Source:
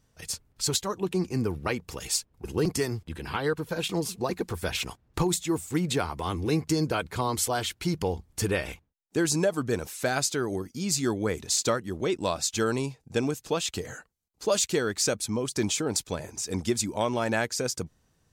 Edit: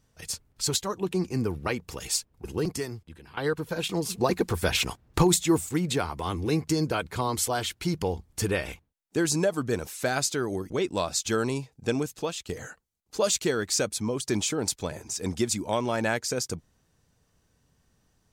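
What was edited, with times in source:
2.34–3.37 s: fade out, to -18.5 dB
4.10–5.69 s: gain +5 dB
10.70–11.98 s: delete
13.40–13.77 s: fade out, to -12 dB

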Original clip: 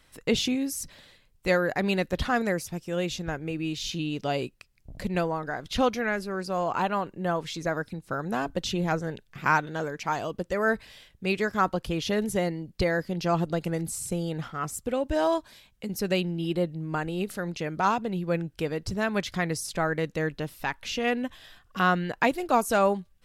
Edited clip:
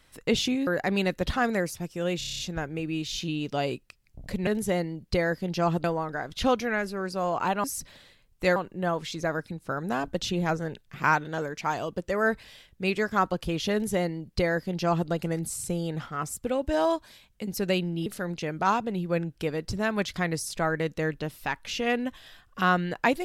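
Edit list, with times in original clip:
0.67–1.59 s: move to 6.98 s
3.10 s: stutter 0.03 s, 8 plays
12.14–13.51 s: copy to 5.18 s
16.48–17.24 s: delete

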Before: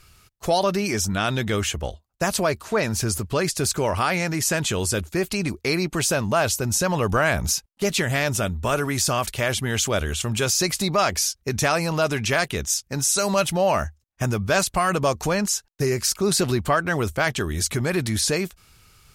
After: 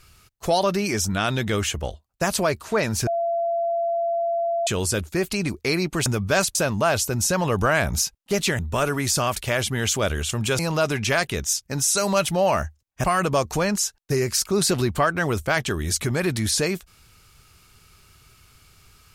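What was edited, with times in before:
3.07–4.67 s: bleep 679 Hz -20.5 dBFS
8.10–8.50 s: delete
10.50–11.80 s: delete
14.25–14.74 s: move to 6.06 s

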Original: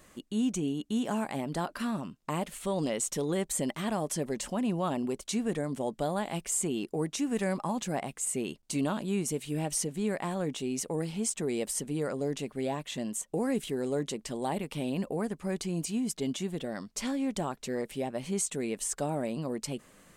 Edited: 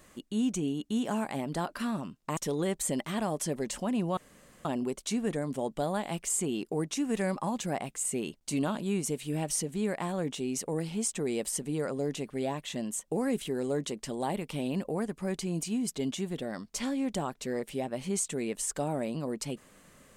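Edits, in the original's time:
2.37–3.07 s: delete
4.87 s: insert room tone 0.48 s

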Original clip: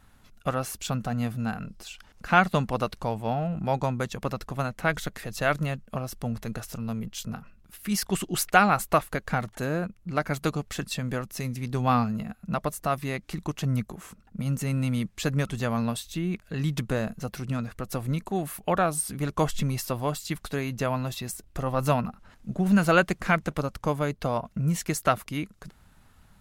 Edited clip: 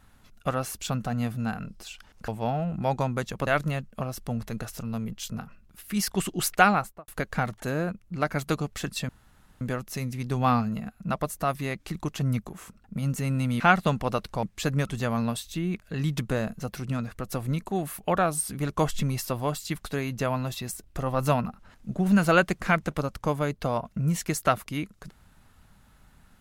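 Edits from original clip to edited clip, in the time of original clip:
2.28–3.11 s: move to 15.03 s
4.30–5.42 s: delete
8.60–9.03 s: studio fade out
11.04 s: insert room tone 0.52 s

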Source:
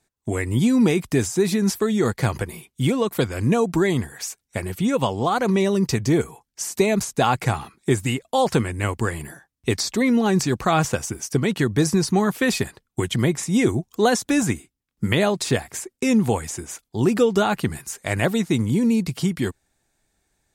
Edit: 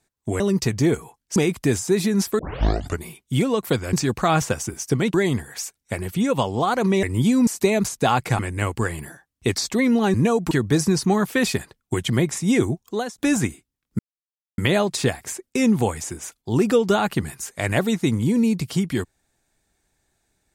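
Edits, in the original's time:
0.40–0.84 s: swap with 5.67–6.63 s
1.87 s: tape start 0.64 s
3.41–3.78 s: swap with 10.36–11.57 s
7.55–8.61 s: delete
13.73–14.24 s: fade out, to -23 dB
15.05 s: insert silence 0.59 s

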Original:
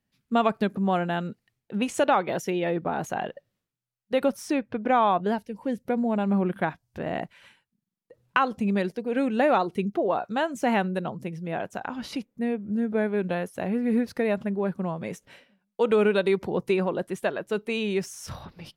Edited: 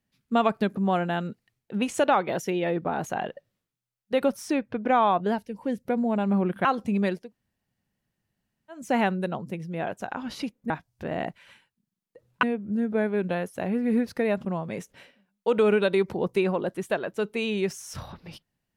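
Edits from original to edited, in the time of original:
6.65–8.38 s: move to 12.43 s
8.94–10.53 s: room tone, crossfade 0.24 s
14.45–14.78 s: delete

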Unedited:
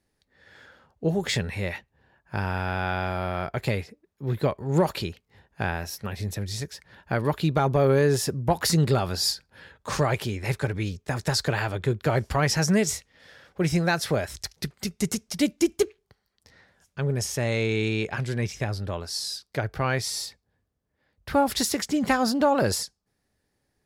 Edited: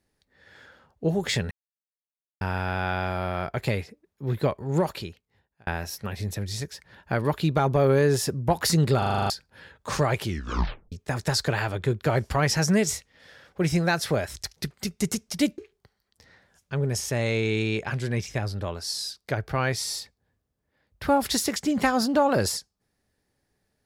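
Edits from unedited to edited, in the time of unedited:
1.51–2.41 s: mute
4.54–5.67 s: fade out
8.98 s: stutter in place 0.04 s, 8 plays
10.23 s: tape stop 0.69 s
15.58–15.84 s: delete

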